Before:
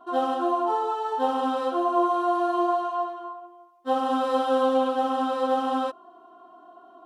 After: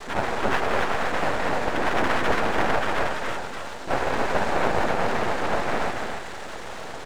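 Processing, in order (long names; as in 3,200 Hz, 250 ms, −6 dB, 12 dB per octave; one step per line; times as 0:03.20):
converter with a step at zero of −27.5 dBFS
dynamic equaliser 840 Hz, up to +5 dB, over −35 dBFS, Q 1.2
cochlear-implant simulation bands 6
half-wave rectification
single-tap delay 280 ms −4.5 dB
level −2 dB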